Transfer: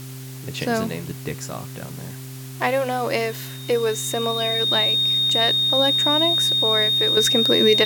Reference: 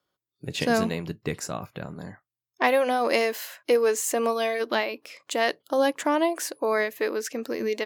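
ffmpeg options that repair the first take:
-af "bandreject=f=130.8:t=h:w=4,bandreject=f=261.6:t=h:w=4,bandreject=f=392.4:t=h:w=4,bandreject=f=3.7k:w=30,afwtdn=0.0079,asetnsamples=n=441:p=0,asendcmd='7.17 volume volume -10dB',volume=0dB"

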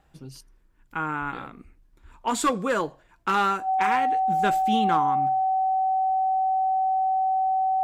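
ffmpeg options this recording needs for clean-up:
-af "bandreject=f=760:w=30"

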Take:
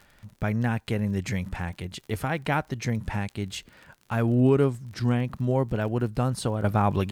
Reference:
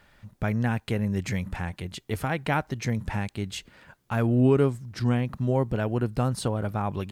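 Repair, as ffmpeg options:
-af "adeclick=t=4,asetnsamples=n=441:p=0,asendcmd='6.64 volume volume -6dB',volume=0dB"

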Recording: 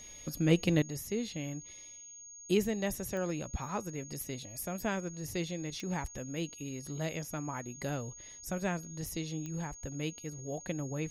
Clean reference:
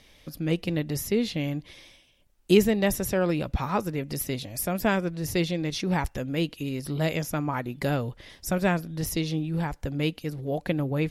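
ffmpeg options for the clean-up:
-af "adeclick=t=4,bandreject=f=6.6k:w=30,asetnsamples=n=441:p=0,asendcmd='0.82 volume volume 10dB',volume=0dB"

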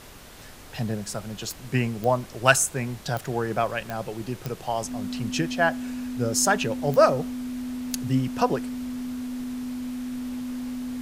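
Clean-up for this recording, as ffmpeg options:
-af "adeclick=t=4,bandreject=f=250:w=30,afftdn=nr=28:nf=-42"

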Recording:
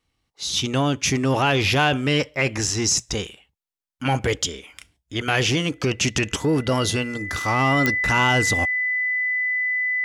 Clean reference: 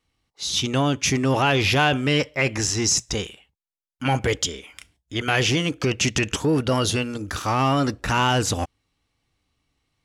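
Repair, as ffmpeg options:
-af "adeclick=t=4,bandreject=f=2k:w=30"

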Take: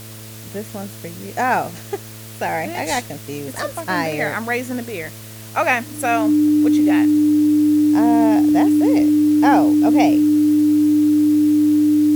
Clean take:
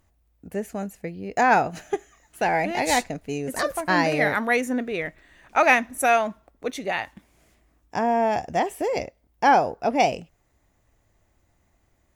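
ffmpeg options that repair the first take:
-af "bandreject=f=109.7:t=h:w=4,bandreject=f=219.4:t=h:w=4,bandreject=f=329.1:t=h:w=4,bandreject=f=438.8:t=h:w=4,bandreject=f=548.5:t=h:w=4,bandreject=f=658.2:t=h:w=4,bandreject=f=300:w=30,afftdn=nr=30:nf=-35"

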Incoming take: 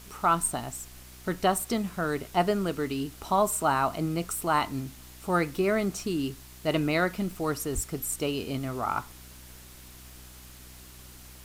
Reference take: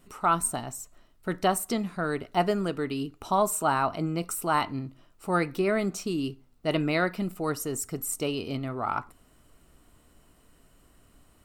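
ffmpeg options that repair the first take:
-filter_complex "[0:a]adeclick=t=4,bandreject=f=62.5:t=h:w=4,bandreject=f=125:t=h:w=4,bandreject=f=187.5:t=h:w=4,bandreject=f=250:t=h:w=4,bandreject=f=312.5:t=h:w=4,bandreject=f=375:t=h:w=4,asplit=3[a][b][c];[a]afade=t=out:st=7.74:d=0.02[d];[b]highpass=f=140:w=0.5412,highpass=f=140:w=1.3066,afade=t=in:st=7.74:d=0.02,afade=t=out:st=7.86:d=0.02[e];[c]afade=t=in:st=7.86:d=0.02[f];[d][e][f]amix=inputs=3:normalize=0,afwtdn=0.0032"

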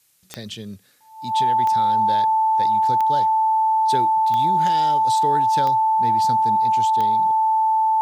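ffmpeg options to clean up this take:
-af "adeclick=t=4,bandreject=f=880:w=30,agate=range=-21dB:threshold=-30dB"

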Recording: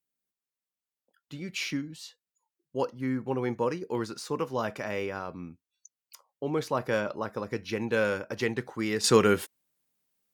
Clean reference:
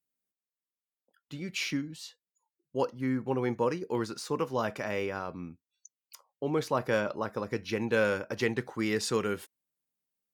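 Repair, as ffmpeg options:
-af "asetnsamples=n=441:p=0,asendcmd='9.04 volume volume -9dB',volume=0dB"

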